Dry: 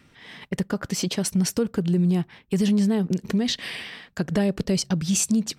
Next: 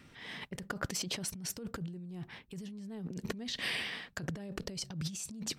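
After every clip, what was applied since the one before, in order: negative-ratio compressor -31 dBFS, ratio -1; gain -9 dB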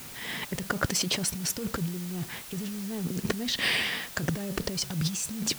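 added noise white -53 dBFS; gain +9 dB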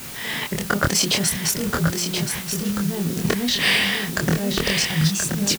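doubler 25 ms -3 dB; echo 1.027 s -6 dB; gain +6.5 dB

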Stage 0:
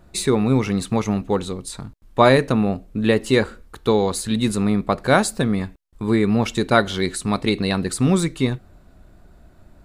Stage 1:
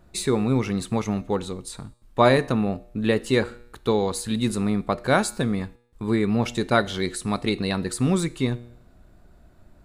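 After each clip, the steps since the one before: resonator 120 Hz, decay 0.71 s, harmonics all, mix 40%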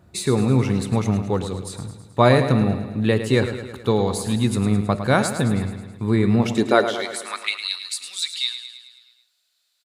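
spectral gain 8.23–9.13, 960–5500 Hz +8 dB; high-pass sweep 94 Hz -> 3900 Hz, 6.22–7.69; feedback echo 0.107 s, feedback 59%, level -10 dB; gain +1 dB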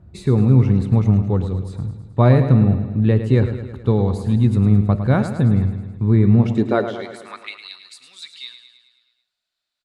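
RIAA curve playback; gain -4.5 dB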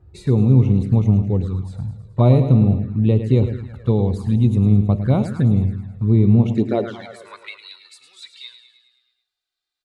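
envelope flanger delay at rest 2.5 ms, full sweep at -12 dBFS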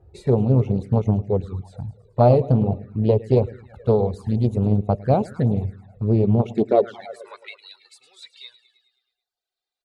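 reverb removal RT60 0.69 s; band shelf 570 Hz +9.5 dB 1.3 oct; Doppler distortion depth 0.32 ms; gain -3.5 dB

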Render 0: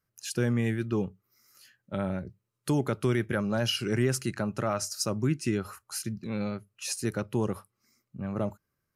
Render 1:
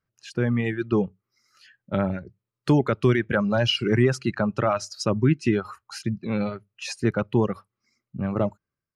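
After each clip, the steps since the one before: LPF 3700 Hz 12 dB/oct; reverb removal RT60 1.2 s; AGC gain up to 8 dB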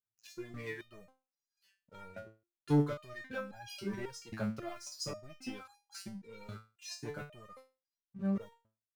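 sample leveller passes 2; high shelf 5600 Hz +9.5 dB; stepped resonator 3.7 Hz 110–820 Hz; gain -8.5 dB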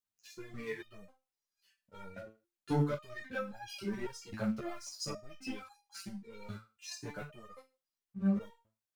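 ensemble effect; gain +3.5 dB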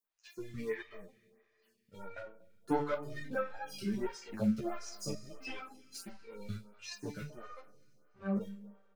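speakerphone echo 0.24 s, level -20 dB; Schroeder reverb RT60 2.7 s, combs from 30 ms, DRR 18 dB; photocell phaser 1.5 Hz; gain +4.5 dB

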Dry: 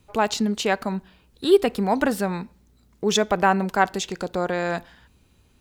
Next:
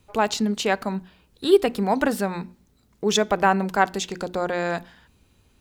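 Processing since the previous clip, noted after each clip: notches 60/120/180/240/300/360 Hz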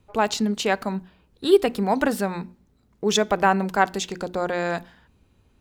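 mismatched tape noise reduction decoder only

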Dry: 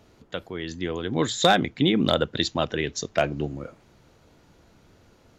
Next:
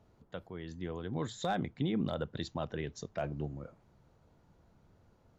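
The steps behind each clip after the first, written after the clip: EQ curve 180 Hz 0 dB, 290 Hz -6 dB, 900 Hz -2 dB, 2500 Hz -11 dB; limiter -17 dBFS, peak gain reduction 6.5 dB; gain -6.5 dB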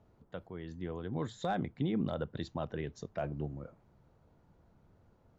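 high shelf 3000 Hz -8 dB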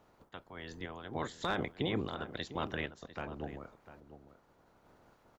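spectral limiter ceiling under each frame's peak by 19 dB; random-step tremolo; outdoor echo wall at 120 m, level -13 dB; gain +1 dB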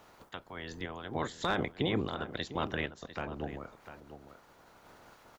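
mismatched tape noise reduction encoder only; gain +3 dB

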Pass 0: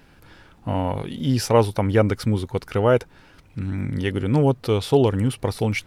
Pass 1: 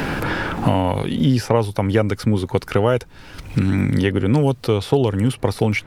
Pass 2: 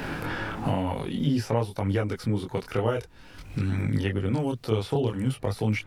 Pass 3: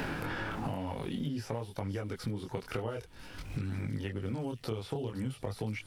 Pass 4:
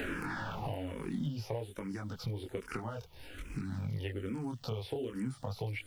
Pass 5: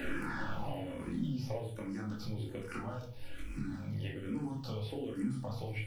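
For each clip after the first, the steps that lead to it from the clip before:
three-band squash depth 100%; gain +2 dB
chorus voices 2, 0.52 Hz, delay 23 ms, depth 4.6 ms; gain -6 dB
compressor, threshold -33 dBFS, peak gain reduction 13.5 dB; thin delay 0.515 s, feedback 63%, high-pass 4800 Hz, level -9 dB
added noise white -74 dBFS; endless phaser -1.2 Hz; gain +1 dB
shoebox room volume 370 m³, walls furnished, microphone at 2.4 m; gain -5.5 dB

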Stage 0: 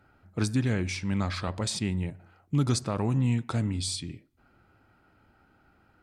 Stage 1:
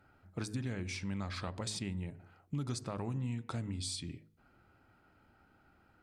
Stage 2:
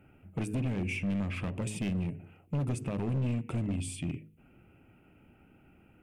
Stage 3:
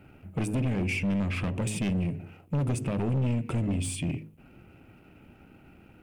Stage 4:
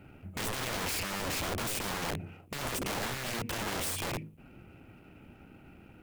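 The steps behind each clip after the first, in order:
de-hum 52.86 Hz, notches 9; compressor 3:1, threshold -33 dBFS, peak gain reduction 9.5 dB; gain -3.5 dB
EQ curve 100 Hz 0 dB, 150 Hz +5 dB, 450 Hz +1 dB, 1100 Hz -9 dB, 1700 Hz -9 dB, 2700 Hz +7 dB, 4100 Hz -22 dB, 10000 Hz -2 dB; overloaded stage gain 34 dB; gain +6.5 dB
sample leveller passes 1; gain +3.5 dB
wrapped overs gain 29.5 dB

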